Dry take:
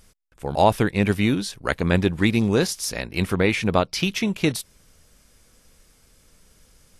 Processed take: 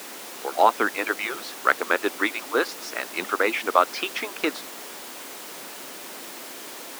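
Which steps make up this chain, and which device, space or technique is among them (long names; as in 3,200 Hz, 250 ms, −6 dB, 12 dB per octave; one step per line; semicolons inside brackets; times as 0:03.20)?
harmonic-percussive split with one part muted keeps percussive
horn gramophone (band-pass filter 280–3,700 Hz; parametric band 1,300 Hz +12 dB 0.77 octaves; tape wow and flutter; pink noise bed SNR 10 dB)
high-pass filter 260 Hz 24 dB per octave
high-shelf EQ 7,700 Hz +3.5 dB
level −2 dB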